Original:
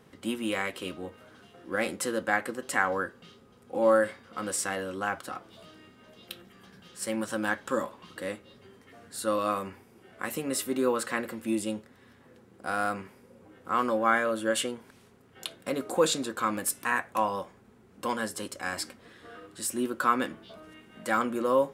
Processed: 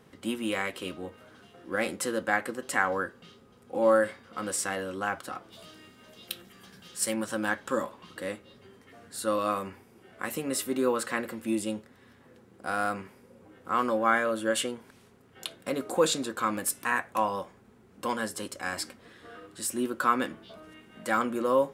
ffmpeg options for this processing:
-filter_complex "[0:a]asettb=1/sr,asplit=3[a][b][c];[a]atrim=end=5.524[d];[b]atrim=start=5.52:end=7.14,asetpts=PTS-STARTPTS,afade=t=in:d=0.004:c=qsin,afade=t=out:st=1.616:d=0.004:c=qsin,highshelf=f=3.4k:g=8.5[e];[c]atrim=start=7.136[f];[d][e]acrossfade=d=0.004:c1=hsin:c2=qsin[g];[g][f]acrossfade=d=0.004:c1=qsin:c2=hsin"

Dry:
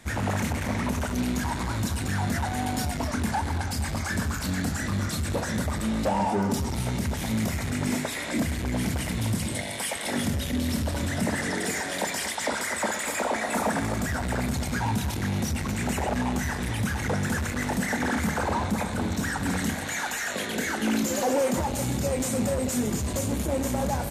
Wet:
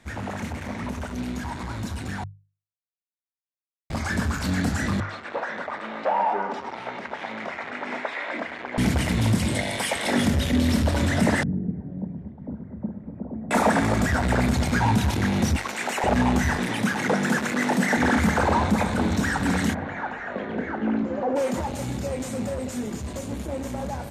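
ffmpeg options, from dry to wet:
-filter_complex "[0:a]asettb=1/sr,asplit=3[a][b][c];[a]atrim=end=5.004[d];[b]atrim=start=5:end=8.78,asetpts=PTS-STARTPTS,afade=t=in:d=0.004:c=qsin,afade=t=out:st=3.776:d=0.004:c=qsin,highpass=650,lowpass=2.1k[e];[c]atrim=start=8.776[f];[d][e]acrossfade=d=0.004:c1=hsin:c2=qsin[g];[g][f]acrossfade=d=0.004:c1=qsin:c2=hsin,asettb=1/sr,asplit=3[h][i][j];[h]atrim=end=11.434[k];[i]atrim=start=11.43:end=13.51,asetpts=PTS-STARTPTS,afade=t=in:d=0.004:c=qsin,afade=t=out:st=2.076:d=0.004:c=qsin,lowpass=f=160:t=q:w=2[l];[j]atrim=start=13.506[m];[k][l]acrossfade=d=0.004:c1=hsin:c2=qsin[n];[n][m]acrossfade=d=0.004:c1=qsin:c2=hsin,asettb=1/sr,asplit=3[o][p][q];[o]atrim=end=15.564[r];[p]atrim=start=15.56:end=16.04,asetpts=PTS-STARTPTS,afade=t=in:d=0.004:c=qsin,afade=t=out:st=0.476:d=0.004:c=qsin,highpass=560[s];[q]atrim=start=16.036[t];[r][s]acrossfade=d=0.004:c1=hsin:c2=qsin[u];[u][t]acrossfade=d=0.004:c1=qsin:c2=hsin,asettb=1/sr,asplit=3[v][w][x];[v]atrim=end=16.564[y];[w]atrim=start=16.56:end=17.97,asetpts=PTS-STARTPTS,afade=t=in:d=0.004:c=qsin,afade=t=out:st=1.406:d=0.004:c=qsin,highpass=f=160:w=0.5412,highpass=f=160:w=1.3066[z];[x]atrim=start=17.966[aa];[y][z]acrossfade=d=0.004:c1=hsin:c2=qsin[ab];[ab][aa]acrossfade=d=0.004:c1=qsin:c2=hsin,asplit=3[ac][ad][ae];[ac]afade=t=out:st=19.73:d=0.02[af];[ad]lowpass=1.3k,afade=t=in:st=19.73:d=0.02,afade=t=out:st=21.35:d=0.02[ag];[ae]afade=t=in:st=21.35:d=0.02[ah];[af][ag][ah]amix=inputs=3:normalize=0,asplit=3[ai][aj][ak];[ai]atrim=end=2.24,asetpts=PTS-STARTPTS,afade=t=out:st=2.236:d=0.004:c=hsin[al];[aj]atrim=start=2.24:end=3.9,asetpts=PTS-STARTPTS,volume=0[am];[ak]atrim=start=3.9,asetpts=PTS-STARTPTS,afade=t=in:d=0.004:c=hsin[an];[al][am][an]concat=n=3:v=0:a=1,highshelf=f=7.5k:g=-11.5,bandreject=f=50:t=h:w=6,bandreject=f=100:t=h:w=6,bandreject=f=150:t=h:w=6,dynaudnorm=f=260:g=31:m=10dB,volume=-3.5dB"

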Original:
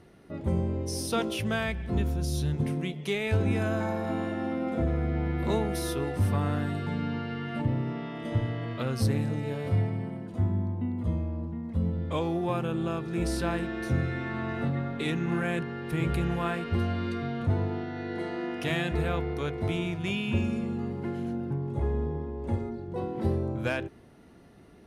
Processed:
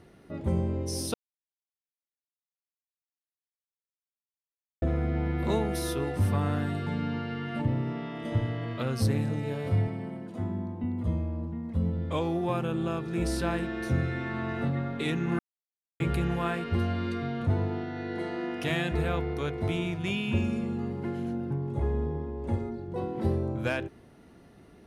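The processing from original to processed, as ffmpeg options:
-filter_complex "[0:a]asettb=1/sr,asplit=3[a][b][c];[a]atrim=end=9.874[d];[b]atrim=start=9.87:end=10.84,asetpts=PTS-STARTPTS,afade=t=in:d=0.004:c=qsin,afade=t=out:st=0.966:d=0.004:c=qsin,highpass=150[e];[c]atrim=start=10.836[f];[d][e]acrossfade=d=0.004:c1=hsin:c2=qsin[g];[g][f]acrossfade=d=0.004:c1=qsin:c2=hsin,asplit=5[h][i][j][k][l];[h]atrim=end=1.14,asetpts=PTS-STARTPTS,afade=t=out:st=1.136:d=0.004:c=hsin[m];[i]atrim=start=1.14:end=4.82,asetpts=PTS-STARTPTS,volume=0[n];[j]atrim=start=4.82:end=15.39,asetpts=PTS-STARTPTS,afade=t=in:d=0.004:c=hsin,afade=t=out:st=10.566:d=0.004:c=hsin[o];[k]atrim=start=15.39:end=16,asetpts=PTS-STARTPTS,volume=0[p];[l]atrim=start=16,asetpts=PTS-STARTPTS,afade=t=in:d=0.004:c=hsin[q];[m][n][o][p][q]concat=n=5:v=0:a=1"

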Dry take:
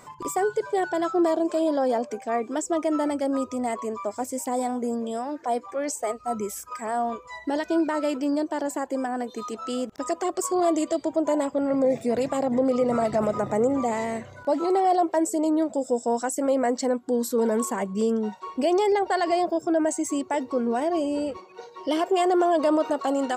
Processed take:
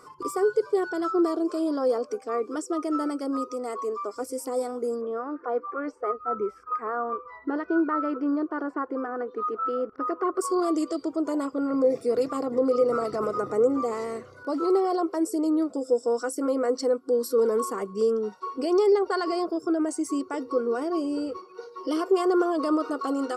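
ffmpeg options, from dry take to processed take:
-filter_complex "[0:a]asettb=1/sr,asplit=3[a][b][c];[a]atrim=end=2.554[d];[b]atrim=start=2.55:end=4.16,asetpts=PTS-STARTPTS,afade=t=in:d=0.004:c=qsin,afade=t=out:st=1.606:d=0.004:c=qsin,highpass=220[e];[c]atrim=start=4.156[f];[d][e]acrossfade=d=0.004:c1=hsin:c2=qsin[g];[g][f]acrossfade=d=0.004:c1=qsin:c2=hsin,asettb=1/sr,asplit=3[h][i][j];[h]atrim=end=5.014[k];[i]atrim=start=5.01:end=10.41,asetpts=PTS-STARTPTS,afade=t=in:d=0.004:c=qsin,afade=t=out:st=5.396:d=0.004:c=qsin,lowpass=f=1.6k:t=q:w=1.7[l];[j]atrim=start=10.406[m];[k][l]acrossfade=d=0.004:c1=hsin:c2=qsin[n];[n][m]acrossfade=d=0.004:c1=qsin:c2=hsin,superequalizer=6b=2.51:7b=3.55:10b=3.98:14b=2.82:16b=2.51,volume=-8.5dB"

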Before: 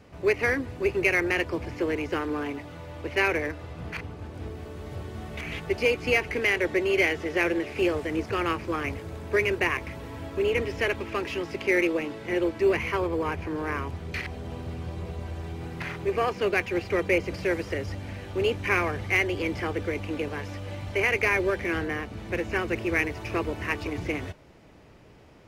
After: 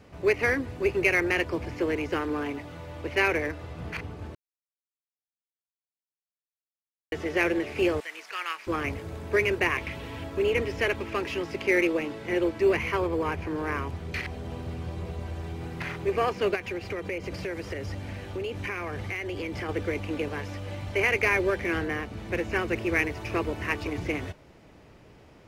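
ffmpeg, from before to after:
-filter_complex "[0:a]asettb=1/sr,asplit=3[a][b][c];[a]atrim=end=8.004[d];[b]atrim=start=8:end=8.67,asetpts=PTS-STARTPTS,afade=t=in:d=0.004:c=qsin,afade=t=out:st=0.666:d=0.004:c=qsin,highpass=1.4k[e];[c]atrim=start=8.666[f];[d][e]acrossfade=d=0.004:c1=hsin:c2=qsin[g];[g][f]acrossfade=d=0.004:c1=qsin:c2=hsin,asettb=1/sr,asplit=3[h][i][j];[h]atrim=end=9.774[k];[i]atrim=start=9.77:end=10.24,asetpts=PTS-STARTPTS,afade=t=in:d=0.004:c=qsin,afade=t=out:st=0.466:d=0.004:c=qsin,equalizer=f=2.9k:t=o:w=1.1:g=8[l];[j]atrim=start=10.236[m];[k][l]acrossfade=d=0.004:c1=hsin:c2=qsin[n];[n][m]acrossfade=d=0.004:c1=qsin:c2=hsin,asettb=1/sr,asplit=3[o][p][q];[o]atrim=end=16.554[r];[p]atrim=start=16.55:end=19.69,asetpts=PTS-STARTPTS,afade=t=in:d=0.004:c=qsin,afade=t=out:st=3.136:d=0.004:c=qsin,acompressor=threshold=-29dB:ratio=6:attack=3.2:release=140:knee=1:detection=peak[s];[q]atrim=start=19.686[t];[r][s]acrossfade=d=0.004:c1=hsin:c2=qsin[u];[u][t]acrossfade=d=0.004:c1=qsin:c2=hsin,asplit=3[v][w][x];[v]atrim=end=4.35,asetpts=PTS-STARTPTS,afade=t=out:st=4.346:d=0.004:c=hsin[y];[w]atrim=start=4.35:end=7.12,asetpts=PTS-STARTPTS,volume=0[z];[x]atrim=start=7.12,asetpts=PTS-STARTPTS,afade=t=in:d=0.004:c=hsin[aa];[y][z][aa]concat=n=3:v=0:a=1"

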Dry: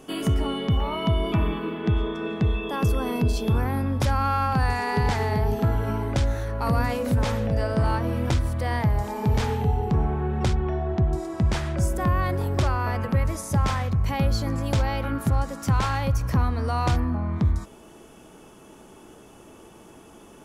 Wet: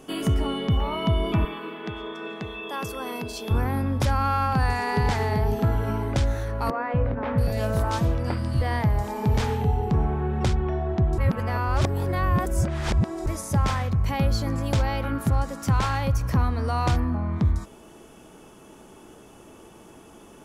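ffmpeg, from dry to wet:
-filter_complex "[0:a]asettb=1/sr,asplit=3[a][b][c];[a]atrim=end=1.454[d];[b]atrim=start=1.45:end=3.51,asetpts=PTS-STARTPTS,afade=t=in:d=0.004:c=qsin,afade=t=out:st=2.056:d=0.004:c=qsin,highpass=f=650:p=1[e];[c]atrim=start=3.506[f];[d][e]acrossfade=d=0.004:c1=hsin:c2=qsin[g];[g][f]acrossfade=d=0.004:c1=qsin:c2=hsin,asettb=1/sr,asplit=3[h][i][j];[h]atrim=end=6.704[k];[i]atrim=start=6.7:end=8.62,asetpts=PTS-STARTPTS,afade=t=in:d=0.004:c=qsin,afade=t=out:st=1.916:d=0.004:c=qsin,acrossover=split=280|2400[l][m][n];[l]adelay=240[o];[n]adelay=680[p];[o][m][p]amix=inputs=3:normalize=0,atrim=end_sample=84672[q];[j]atrim=start=8.616[r];[k][q]acrossfade=d=0.004:c1=hsin:c2=qsin[s];[s][r]acrossfade=d=0.004:c1=qsin:c2=hsin,asplit=3[t][u][v];[t]atrim=end=11.182[w];[u]atrim=start=11.178:end=13.262,asetpts=PTS-STARTPTS,areverse[x];[v]atrim=start=13.258[y];[w][x]acrossfade=d=0.004:c1=hsin:c2=hsin[z];[z][y]acrossfade=d=0.004:c1=hsin:c2=hsin"

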